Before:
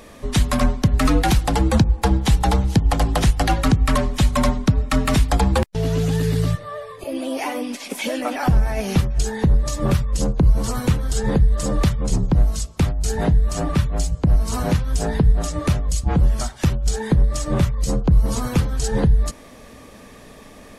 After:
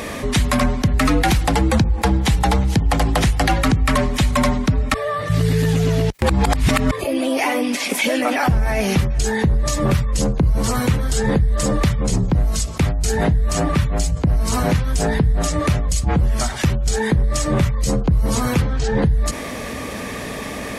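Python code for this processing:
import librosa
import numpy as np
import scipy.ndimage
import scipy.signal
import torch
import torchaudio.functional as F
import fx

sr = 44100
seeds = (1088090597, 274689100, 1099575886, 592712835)

y = fx.air_absorb(x, sr, metres=130.0, at=(18.61, 19.01), fade=0.02)
y = fx.edit(y, sr, fx.reverse_span(start_s=4.94, length_s=1.97), tone=tone)
y = scipy.signal.sosfilt(scipy.signal.butter(2, 48.0, 'highpass', fs=sr, output='sos'), y)
y = fx.peak_eq(y, sr, hz=2100.0, db=4.5, octaves=0.64)
y = fx.env_flatten(y, sr, amount_pct=50)
y = y * 10.0 ** (-1.5 / 20.0)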